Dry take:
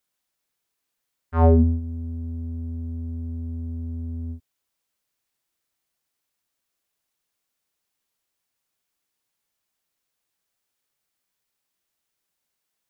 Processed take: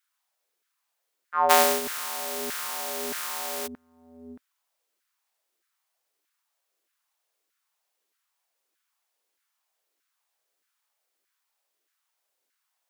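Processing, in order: 1.49–3.66 s: spectral contrast reduction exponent 0.31; LFO high-pass saw down 1.6 Hz 330–1600 Hz

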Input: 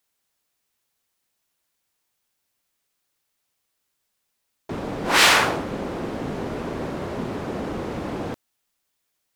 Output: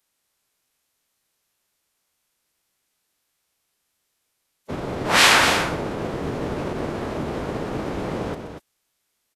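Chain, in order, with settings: loudspeakers at several distances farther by 42 m -12 dB, 82 m -8 dB; formant-preserving pitch shift -8.5 st; trim +2.5 dB

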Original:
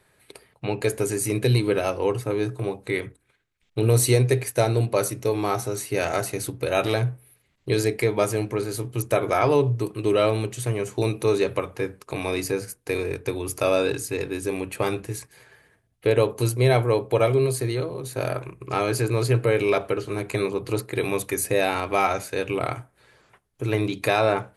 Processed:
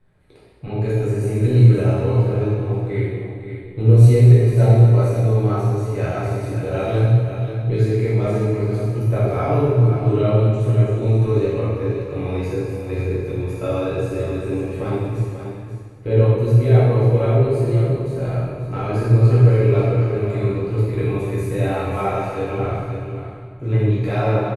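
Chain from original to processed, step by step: RIAA curve playback; on a send: delay 537 ms -9 dB; on the sum: plate-style reverb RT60 1.7 s, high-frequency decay 0.9×, DRR -9 dB; trim -11.5 dB

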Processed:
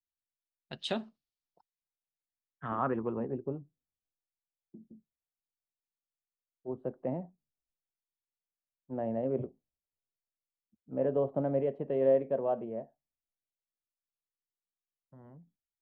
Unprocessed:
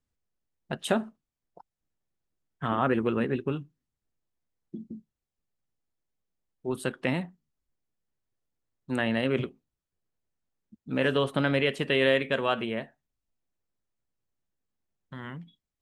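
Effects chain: dynamic bell 1.4 kHz, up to -6 dB, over -46 dBFS, Q 2.6; low-pass sweep 4.5 kHz -> 660 Hz, 1.67–3.43 s; three bands expanded up and down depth 40%; trim -8.5 dB

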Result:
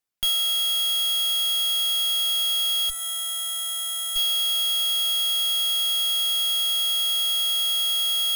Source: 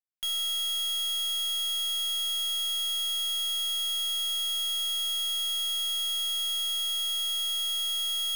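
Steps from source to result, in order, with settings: time-frequency box 2.90–4.16 s, 1.6–7 kHz -11 dB; in parallel at -8 dB: Schmitt trigger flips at -49.5 dBFS; on the sum: Chebyshev shaper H 7 -8 dB, 8 -7 dB, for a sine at -26.5 dBFS; reverb removal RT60 0.59 s; trim +5 dB

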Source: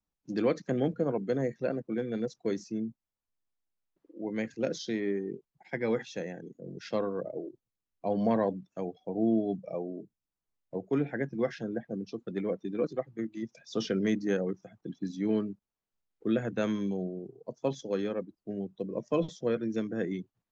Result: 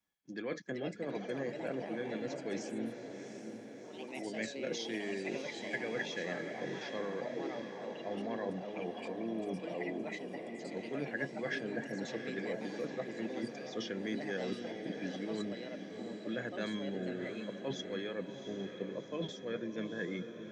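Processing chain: high-pass 200 Hz 6 dB/octave; peaking EQ 2.2 kHz +7.5 dB 0.29 oct; reverse; compression 6:1, threshold -39 dBFS, peak gain reduction 15.5 dB; reverse; small resonant body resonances 1.7/3.3 kHz, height 15 dB, ringing for 40 ms; ever faster or slower copies 443 ms, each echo +3 st, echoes 3, each echo -6 dB; on a send: echo that smears into a reverb 714 ms, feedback 55%, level -7.5 dB; on the sum: trim +2 dB

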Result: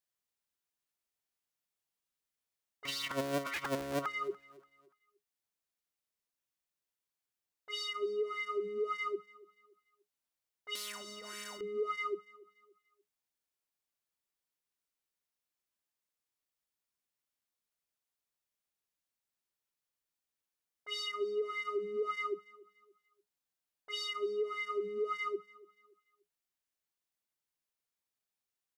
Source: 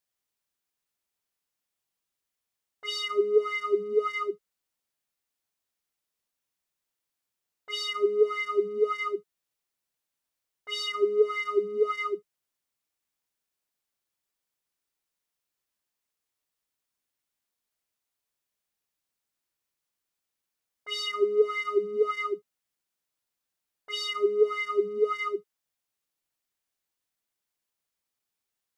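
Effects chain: 2.85–4.06 s: cycle switcher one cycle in 3, inverted; gain riding 0.5 s; peak limiter -21.5 dBFS, peak gain reduction 7 dB; on a send: feedback delay 289 ms, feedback 36%, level -22 dB; 10.75–11.61 s: on the sum: spectrum-flattening compressor 10:1; trim -6 dB

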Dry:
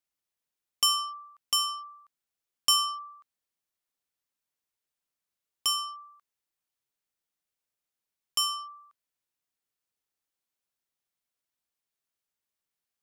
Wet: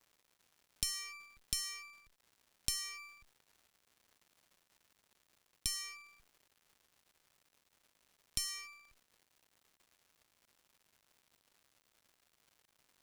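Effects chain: comb filter that takes the minimum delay 0.52 ms; amplifier tone stack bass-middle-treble 6-0-2; crackle 310 per s -72 dBFS; compression 8:1, threshold -50 dBFS, peak gain reduction 15 dB; trim +16 dB

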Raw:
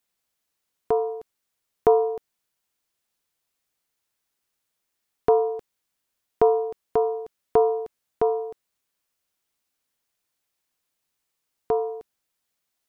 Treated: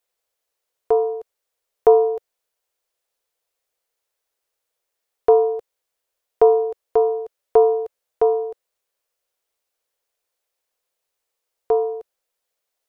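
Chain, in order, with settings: graphic EQ 125/250/500 Hz -9/-10/+11 dB; trim -1 dB

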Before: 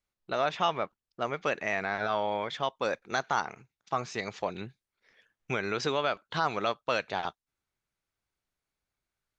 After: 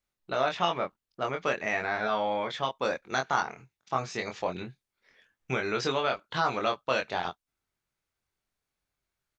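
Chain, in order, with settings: doubling 23 ms -4 dB

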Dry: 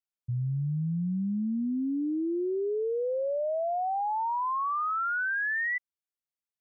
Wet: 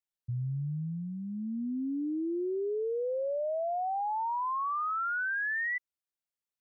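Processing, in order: dynamic bell 190 Hz, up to -6 dB, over -45 dBFS, Q 3.1; trim -2.5 dB

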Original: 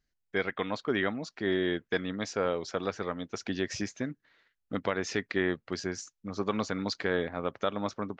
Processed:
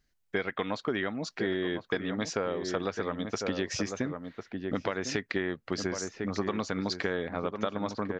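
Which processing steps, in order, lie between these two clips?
echo from a far wall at 180 m, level -9 dB; compression, threshold -33 dBFS, peak gain reduction 10.5 dB; trim +6 dB

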